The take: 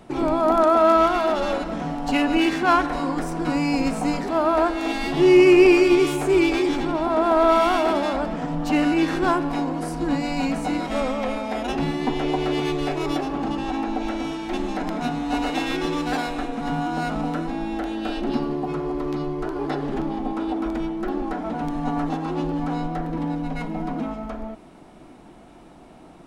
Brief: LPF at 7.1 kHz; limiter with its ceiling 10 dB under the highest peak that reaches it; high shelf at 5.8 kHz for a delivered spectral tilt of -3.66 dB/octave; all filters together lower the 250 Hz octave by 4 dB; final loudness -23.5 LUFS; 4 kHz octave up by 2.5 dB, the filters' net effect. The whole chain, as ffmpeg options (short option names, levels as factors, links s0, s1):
-af "lowpass=7100,equalizer=f=250:t=o:g=-6,equalizer=f=4000:t=o:g=5.5,highshelf=f=5800:g=-5,volume=1.5,alimiter=limit=0.237:level=0:latency=1"